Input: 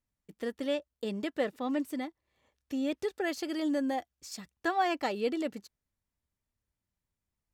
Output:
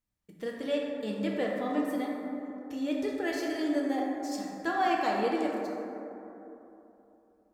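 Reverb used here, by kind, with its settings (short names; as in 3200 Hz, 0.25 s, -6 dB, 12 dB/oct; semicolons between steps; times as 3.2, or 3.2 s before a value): plate-style reverb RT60 3.2 s, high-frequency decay 0.3×, DRR -2.5 dB; gain -2.5 dB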